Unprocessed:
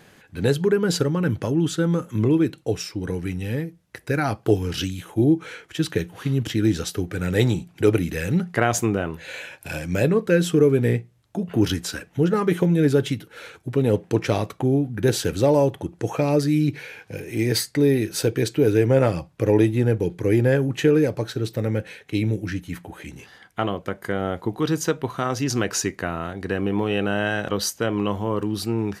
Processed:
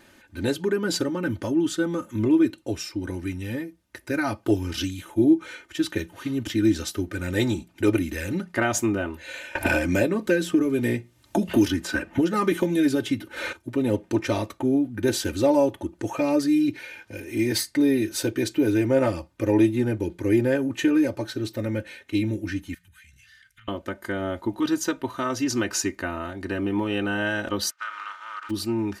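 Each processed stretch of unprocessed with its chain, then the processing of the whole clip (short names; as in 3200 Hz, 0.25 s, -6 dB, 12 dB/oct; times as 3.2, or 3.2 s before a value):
9.55–13.53 notch 1400 Hz, Q 26 + three-band squash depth 100%
22.74–23.68 elliptic band-stop 150–1600 Hz, stop band 50 dB + compressor, threshold -47 dBFS
27.69–28.49 spectral contrast lowered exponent 0.37 + ladder band-pass 1400 Hz, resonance 80%
whole clip: notch 610 Hz, Q 14; comb 3.3 ms, depth 87%; gain -4 dB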